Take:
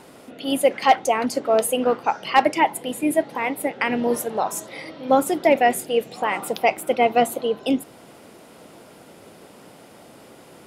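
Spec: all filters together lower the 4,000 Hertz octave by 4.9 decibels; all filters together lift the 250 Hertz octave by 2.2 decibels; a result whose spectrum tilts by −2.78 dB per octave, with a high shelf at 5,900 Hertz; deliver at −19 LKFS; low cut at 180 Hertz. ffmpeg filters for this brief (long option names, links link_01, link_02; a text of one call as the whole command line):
ffmpeg -i in.wav -af "highpass=180,equalizer=frequency=250:width_type=o:gain=3.5,equalizer=frequency=4000:width_type=o:gain=-5,highshelf=frequency=5900:gain=-8.5,volume=2.5dB" out.wav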